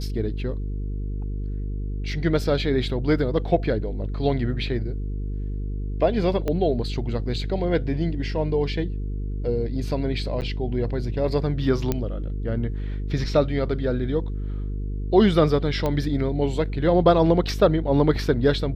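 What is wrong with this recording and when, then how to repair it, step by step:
buzz 50 Hz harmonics 9 -28 dBFS
6.48 s: pop -14 dBFS
10.41–10.42 s: dropout 9 ms
11.92 s: pop -10 dBFS
15.86 s: pop -13 dBFS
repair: de-click; de-hum 50 Hz, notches 9; interpolate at 10.41 s, 9 ms

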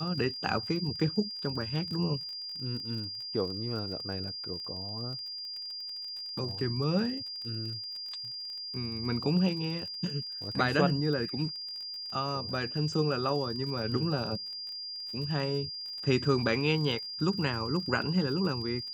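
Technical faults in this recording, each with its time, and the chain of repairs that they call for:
crackle 32 per s -39 dBFS
whine 4.8 kHz -37 dBFS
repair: de-click; band-stop 4.8 kHz, Q 30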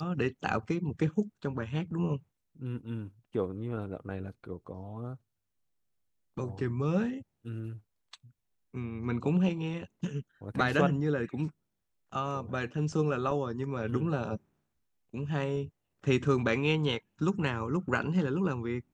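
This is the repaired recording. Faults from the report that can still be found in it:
nothing left

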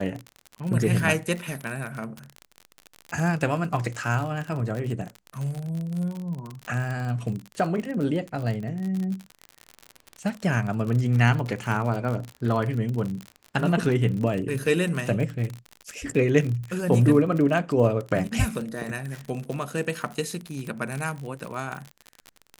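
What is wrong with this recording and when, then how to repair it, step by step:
crackle 46 per s -29 dBFS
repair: de-click

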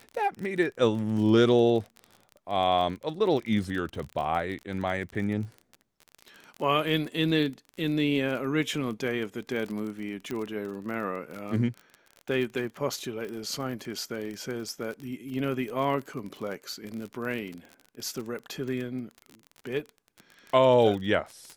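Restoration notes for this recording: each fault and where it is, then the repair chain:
crackle 33 per s -33 dBFS
10.31 s: pop -20 dBFS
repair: de-click

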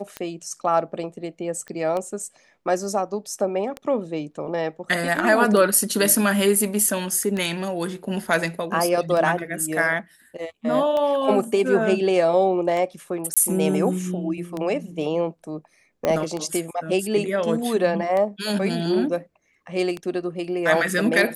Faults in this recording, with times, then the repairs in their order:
tick 33 1/3 rpm -15 dBFS
1.68 s: pop -23 dBFS
13.34–13.37 s: dropout 26 ms
16.05 s: pop -9 dBFS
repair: de-click; interpolate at 13.34 s, 26 ms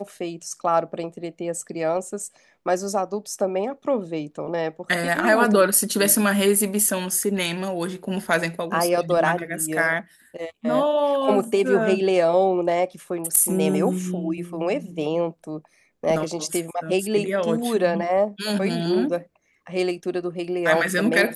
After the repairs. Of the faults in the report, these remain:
16.05 s: pop

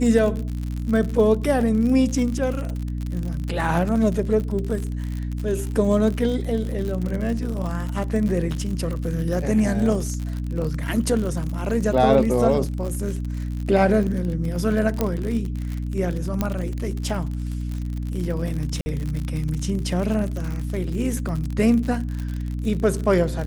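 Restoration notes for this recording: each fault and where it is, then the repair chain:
crackle 57 per s -27 dBFS
hum 60 Hz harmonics 5 -27 dBFS
15.01 s: pop -8 dBFS
16.41 s: pop -9 dBFS
18.81–18.86 s: dropout 50 ms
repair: de-click; de-hum 60 Hz, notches 5; interpolate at 18.81 s, 50 ms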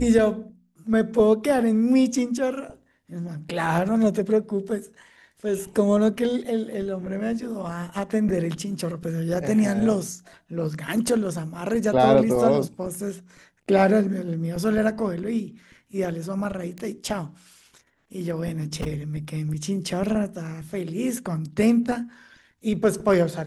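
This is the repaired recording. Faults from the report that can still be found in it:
nothing left

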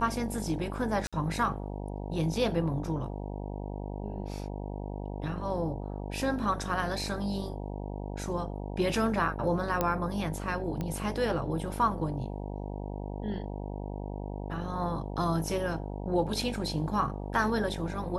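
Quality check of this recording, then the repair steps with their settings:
buzz 50 Hz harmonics 19 -37 dBFS
1.07–1.13 s: dropout 56 ms
9.81 s: pop -13 dBFS
10.81 s: pop -21 dBFS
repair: de-click; de-hum 50 Hz, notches 19; interpolate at 1.07 s, 56 ms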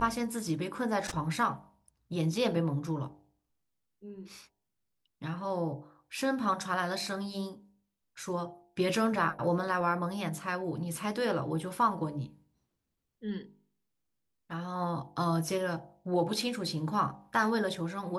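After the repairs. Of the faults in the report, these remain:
nothing left

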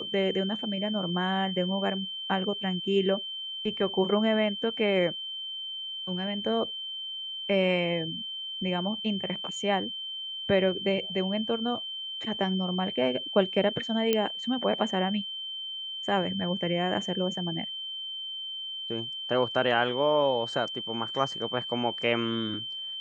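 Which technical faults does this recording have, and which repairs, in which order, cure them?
whine 3.1 kHz -34 dBFS
14.13 s: pop -11 dBFS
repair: de-click; band-stop 3.1 kHz, Q 30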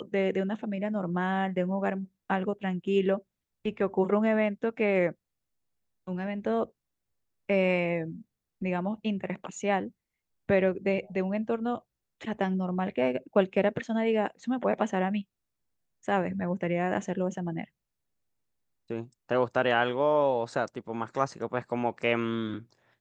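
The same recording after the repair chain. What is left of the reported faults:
nothing left

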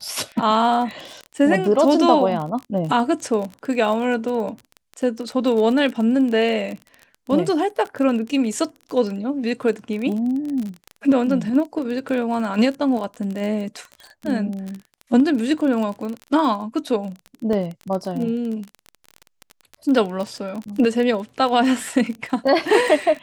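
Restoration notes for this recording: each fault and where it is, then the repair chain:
crackle 24 per s -26 dBFS
17.53 s: dropout 2.2 ms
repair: de-click; interpolate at 17.53 s, 2.2 ms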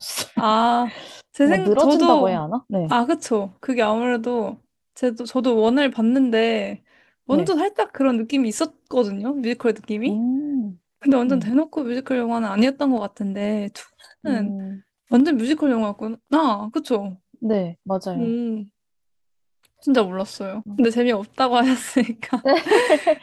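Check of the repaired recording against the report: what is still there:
nothing left

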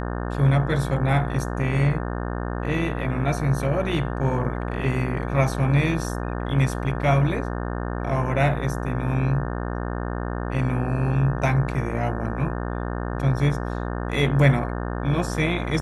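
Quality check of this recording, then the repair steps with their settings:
buzz 60 Hz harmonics 30 -28 dBFS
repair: de-hum 60 Hz, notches 30

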